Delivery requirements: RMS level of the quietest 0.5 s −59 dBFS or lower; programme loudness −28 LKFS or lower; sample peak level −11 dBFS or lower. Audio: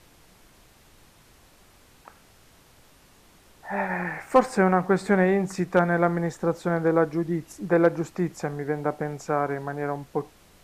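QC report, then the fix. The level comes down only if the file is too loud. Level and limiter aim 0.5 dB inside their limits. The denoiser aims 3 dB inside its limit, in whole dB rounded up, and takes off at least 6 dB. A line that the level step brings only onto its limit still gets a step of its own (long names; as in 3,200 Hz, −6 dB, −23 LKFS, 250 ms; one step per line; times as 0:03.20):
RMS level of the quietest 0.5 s −56 dBFS: out of spec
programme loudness −25.0 LKFS: out of spec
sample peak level −6.0 dBFS: out of spec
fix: level −3.5 dB
brickwall limiter −11.5 dBFS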